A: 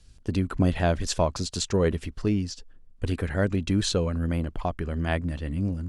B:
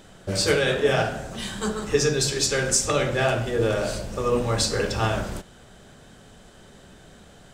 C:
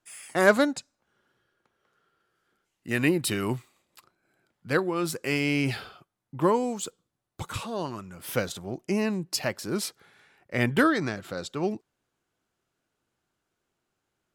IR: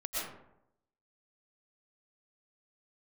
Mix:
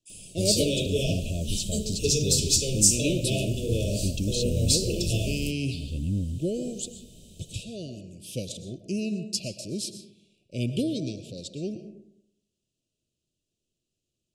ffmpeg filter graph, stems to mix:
-filter_complex "[0:a]alimiter=limit=-19.5dB:level=0:latency=1,adelay=500,volume=2dB[a];[1:a]highshelf=f=11k:g=9.5,adelay=100,volume=1dB[b];[2:a]lowpass=f=9.8k:w=0.5412,lowpass=f=9.8k:w=1.3066,volume=0dB,asplit=3[c][d][e];[d]volume=-12dB[f];[e]apad=whole_len=281579[g];[a][g]sidechaincompress=threshold=-36dB:ratio=8:attack=16:release=226[h];[3:a]atrim=start_sample=2205[i];[f][i]afir=irnorm=-1:irlink=0[j];[h][b][c][j]amix=inputs=4:normalize=0,asuperstop=centerf=1300:order=20:qfactor=0.71,equalizer=f=800:w=0.42:g=-10.5"

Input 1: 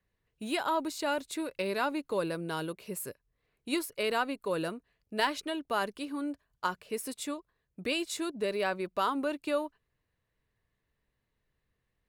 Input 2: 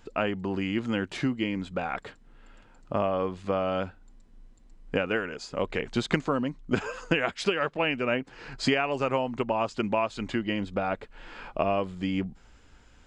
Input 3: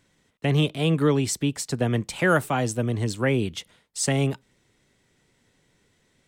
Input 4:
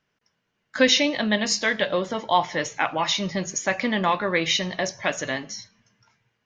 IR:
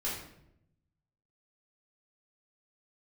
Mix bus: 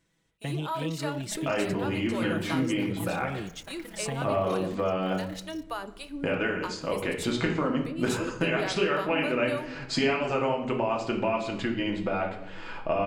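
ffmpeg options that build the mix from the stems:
-filter_complex "[0:a]alimiter=limit=-23.5dB:level=0:latency=1:release=126,acrossover=split=500[a][b];[a]aeval=exprs='val(0)*(1-1/2+1/2*cos(2*PI*3.4*n/s))':c=same[c];[b]aeval=exprs='val(0)*(1-1/2-1/2*cos(2*PI*3.4*n/s))':c=same[d];[c][d]amix=inputs=2:normalize=0,volume=1dB,asplit=2[e][f];[f]volume=-14dB[g];[1:a]adelay=1300,volume=-1.5dB,asplit=2[h][i];[i]volume=-5.5dB[j];[2:a]volume=-9.5dB[k];[3:a]acrusher=bits=5:mix=0:aa=0.000001,tremolo=f=34:d=1,volume=-19dB[l];[h][k][l]amix=inputs=3:normalize=0,aecho=1:1:6.1:0.66,acompressor=threshold=-30dB:ratio=6,volume=0dB[m];[4:a]atrim=start_sample=2205[n];[g][j]amix=inputs=2:normalize=0[o];[o][n]afir=irnorm=-1:irlink=0[p];[e][m][p]amix=inputs=3:normalize=0"

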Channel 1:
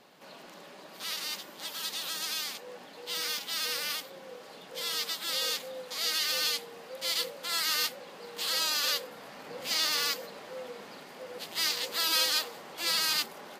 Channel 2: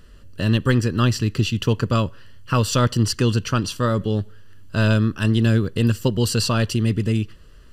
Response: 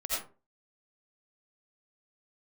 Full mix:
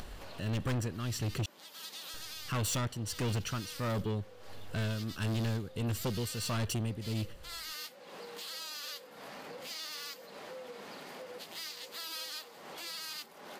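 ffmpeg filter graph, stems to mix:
-filter_complex "[0:a]acompressor=mode=upward:threshold=-35dB:ratio=2.5,volume=-14dB[a];[1:a]highshelf=f=9.5k:g=9.5,bandreject=f=4.8k:w=8.2,tremolo=f=1.5:d=0.79,volume=-5dB,asplit=3[b][c][d];[b]atrim=end=1.46,asetpts=PTS-STARTPTS,afade=t=out:st=1.456:d=0.004:c=hsin[e];[c]atrim=start=1.46:end=2.14,asetpts=PTS-STARTPTS,volume=0[f];[d]atrim=start=2.14,asetpts=PTS-STARTPTS,afade=t=in:d=0.004:c=hsin[g];[e][f][g]concat=n=3:v=0:a=1[h];[a][h]amix=inputs=2:normalize=0,acompressor=mode=upward:threshold=-36dB:ratio=2.5,asoftclip=type=tanh:threshold=-29.5dB"

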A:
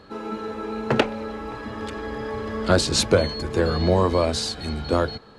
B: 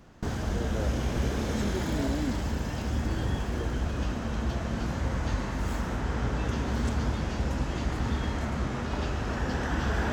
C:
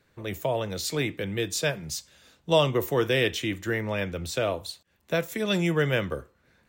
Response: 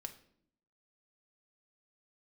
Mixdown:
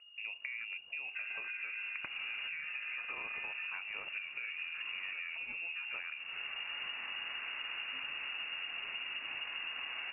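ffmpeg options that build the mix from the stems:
-filter_complex "[0:a]acompressor=threshold=-33dB:ratio=2,adelay=1050,volume=-0.5dB[a];[1:a]adelay=1550,volume=-5dB[b];[2:a]acompressor=threshold=-33dB:ratio=2.5,aeval=exprs='val(0)+0.00447*(sin(2*PI*50*n/s)+sin(2*PI*2*50*n/s)/2+sin(2*PI*3*50*n/s)/3+sin(2*PI*4*50*n/s)/4+sin(2*PI*5*50*n/s)/5)':c=same,volume=-2dB,asplit=3[c][d][e];[d]volume=-16dB[f];[e]apad=whole_len=515058[g];[b][g]sidechaincompress=threshold=-48dB:ratio=8:attack=35:release=262[h];[a][c]amix=inputs=2:normalize=0,afwtdn=0.0158,acompressor=threshold=-34dB:ratio=6,volume=0dB[i];[3:a]atrim=start_sample=2205[j];[f][j]afir=irnorm=-1:irlink=0[k];[h][i][k]amix=inputs=3:normalize=0,lowshelf=f=110:g=-8,lowpass=f=2.5k:t=q:w=0.5098,lowpass=f=2.5k:t=q:w=0.6013,lowpass=f=2.5k:t=q:w=0.9,lowpass=f=2.5k:t=q:w=2.563,afreqshift=-2900,acompressor=threshold=-38dB:ratio=6"

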